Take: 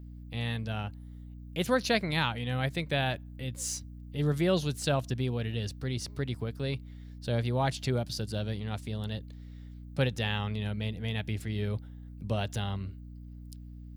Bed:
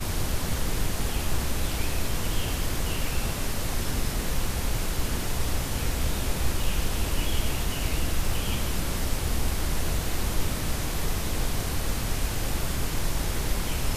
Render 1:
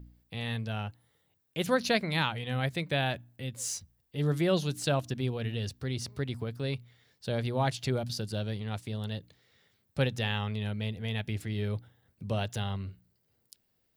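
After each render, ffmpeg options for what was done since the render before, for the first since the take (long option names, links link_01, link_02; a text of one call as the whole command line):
ffmpeg -i in.wav -af "bandreject=frequency=60:width_type=h:width=4,bandreject=frequency=120:width_type=h:width=4,bandreject=frequency=180:width_type=h:width=4,bandreject=frequency=240:width_type=h:width=4,bandreject=frequency=300:width_type=h:width=4" out.wav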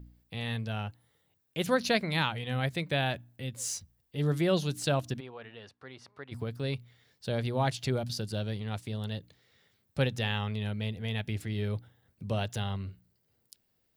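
ffmpeg -i in.wav -filter_complex "[0:a]asplit=3[link_01][link_02][link_03];[link_01]afade=type=out:start_time=5.19:duration=0.02[link_04];[link_02]bandpass=frequency=1100:width_type=q:width=1.3,afade=type=in:start_time=5.19:duration=0.02,afade=type=out:start_time=6.31:duration=0.02[link_05];[link_03]afade=type=in:start_time=6.31:duration=0.02[link_06];[link_04][link_05][link_06]amix=inputs=3:normalize=0" out.wav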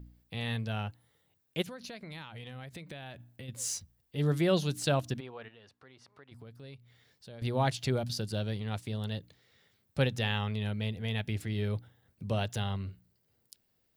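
ffmpeg -i in.wav -filter_complex "[0:a]asplit=3[link_01][link_02][link_03];[link_01]afade=type=out:start_time=1.61:duration=0.02[link_04];[link_02]acompressor=threshold=-40dB:ratio=20:attack=3.2:release=140:knee=1:detection=peak,afade=type=in:start_time=1.61:duration=0.02,afade=type=out:start_time=3.48:duration=0.02[link_05];[link_03]afade=type=in:start_time=3.48:duration=0.02[link_06];[link_04][link_05][link_06]amix=inputs=3:normalize=0,asettb=1/sr,asplit=3[link_07][link_08][link_09];[link_07]atrim=end=5.484[link_10];[link_08]atrim=start=5.48:end=7.42,asetpts=PTS-STARTPTS,afade=type=in:duration=0.004:curve=qsin,afade=type=out:start_time=1.936:duration=0.004:curve=qsin,acompressor=threshold=-58dB:ratio=2:attack=3.2:release=140:knee=1:detection=peak[link_11];[link_09]atrim=start=7.416[link_12];[link_10][link_11]acrossfade=duration=0.004:curve1=hsin:curve2=qsin[link_13];[link_13][link_12]acrossfade=duration=0.004:curve1=qsin:curve2=hsin" out.wav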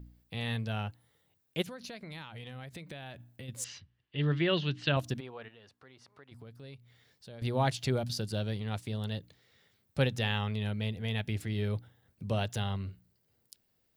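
ffmpeg -i in.wav -filter_complex "[0:a]asettb=1/sr,asplit=3[link_01][link_02][link_03];[link_01]atrim=end=3.644[link_04];[link_02]atrim=start=3.64:end=4.97,asetpts=PTS-STARTPTS,afade=type=in:duration=0.004:curve=qsin,afade=type=out:start_time=1.326:duration=0.004:curve=qsin,highpass=100,equalizer=frequency=130:width_type=q:width=4:gain=3,equalizer=frequency=200:width_type=q:width=4:gain=-7,equalizer=frequency=500:width_type=q:width=4:gain=-6,equalizer=frequency=740:width_type=q:width=4:gain=-6,equalizer=frequency=1800:width_type=q:width=4:gain=6,equalizer=frequency=2900:width_type=q:width=4:gain=8,lowpass=frequency=4000:width=0.5412,lowpass=frequency=4000:width=1.3066[link_05];[link_03]atrim=start=4.966[link_06];[link_04][link_05]acrossfade=duration=0.004:curve1=hsin:curve2=qsin[link_07];[link_07][link_06]acrossfade=duration=0.004:curve1=qsin:curve2=hsin" out.wav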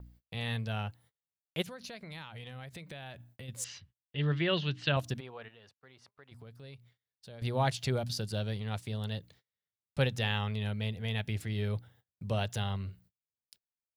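ffmpeg -i in.wav -af "agate=range=-31dB:threshold=-59dB:ratio=16:detection=peak,equalizer=frequency=290:width=1.7:gain=-4.5" out.wav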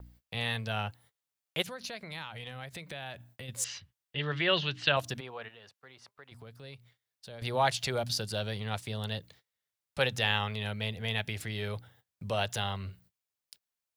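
ffmpeg -i in.wav -filter_complex "[0:a]acrossover=split=480[link_01][link_02];[link_01]alimiter=level_in=8.5dB:limit=-24dB:level=0:latency=1,volume=-8.5dB[link_03];[link_02]acontrast=34[link_04];[link_03][link_04]amix=inputs=2:normalize=0" out.wav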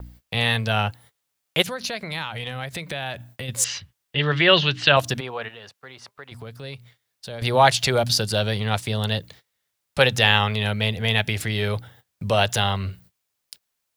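ffmpeg -i in.wav -af "volume=11.5dB,alimiter=limit=-1dB:level=0:latency=1" out.wav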